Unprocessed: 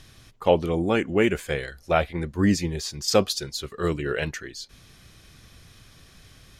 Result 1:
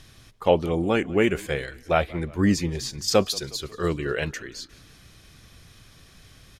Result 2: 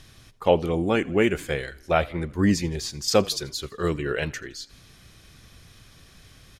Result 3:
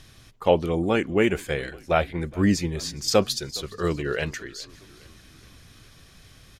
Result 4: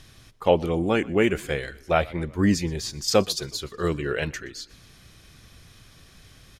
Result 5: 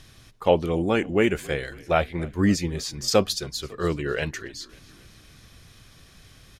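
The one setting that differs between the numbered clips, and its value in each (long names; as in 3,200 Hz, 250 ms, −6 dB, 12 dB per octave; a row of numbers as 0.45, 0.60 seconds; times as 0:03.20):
echo with shifted repeats, delay time: 180, 83, 414, 122, 273 milliseconds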